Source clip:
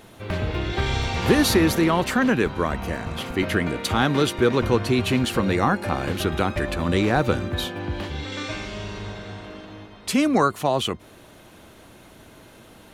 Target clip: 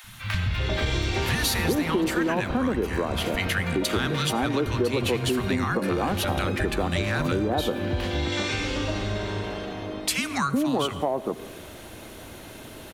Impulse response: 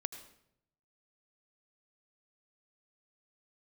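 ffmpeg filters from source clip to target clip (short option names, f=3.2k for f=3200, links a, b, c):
-filter_complex "[0:a]acrossover=split=180|1100[a][b][c];[a]adelay=40[d];[b]adelay=390[e];[d][e][c]amix=inputs=3:normalize=0,acontrast=68,asplit=2[f][g];[1:a]atrim=start_sample=2205,highshelf=f=12k:g=10.5[h];[g][h]afir=irnorm=-1:irlink=0,volume=-3dB[i];[f][i]amix=inputs=2:normalize=0,acompressor=threshold=-19dB:ratio=4,volume=-4dB"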